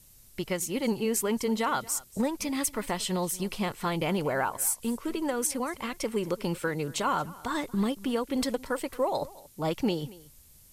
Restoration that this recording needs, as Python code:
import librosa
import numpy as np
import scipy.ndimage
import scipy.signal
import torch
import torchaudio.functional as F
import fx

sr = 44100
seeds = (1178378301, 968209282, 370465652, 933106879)

y = fx.noise_reduce(x, sr, print_start_s=10.21, print_end_s=10.71, reduce_db=23.0)
y = fx.fix_echo_inverse(y, sr, delay_ms=230, level_db=-20.5)